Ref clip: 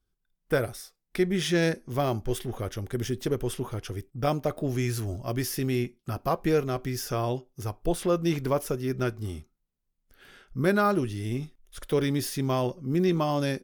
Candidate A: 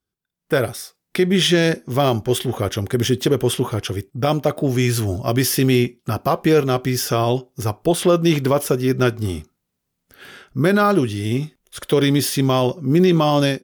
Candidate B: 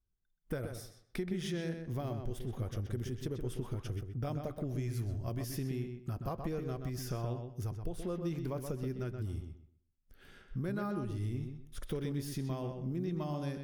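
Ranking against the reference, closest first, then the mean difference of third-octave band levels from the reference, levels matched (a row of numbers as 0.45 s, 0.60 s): A, B; 1.5 dB, 5.5 dB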